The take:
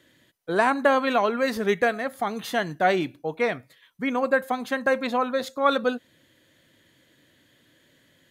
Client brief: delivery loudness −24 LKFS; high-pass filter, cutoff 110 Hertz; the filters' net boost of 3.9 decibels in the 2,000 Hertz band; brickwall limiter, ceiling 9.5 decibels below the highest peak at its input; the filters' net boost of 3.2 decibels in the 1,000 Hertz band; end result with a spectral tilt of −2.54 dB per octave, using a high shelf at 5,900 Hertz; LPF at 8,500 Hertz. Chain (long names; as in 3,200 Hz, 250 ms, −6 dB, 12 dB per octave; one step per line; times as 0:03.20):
high-pass filter 110 Hz
low-pass filter 8,500 Hz
parametric band 1,000 Hz +3.5 dB
parametric band 2,000 Hz +4.5 dB
high-shelf EQ 5,900 Hz −8.5 dB
level +1 dB
brickwall limiter −12.5 dBFS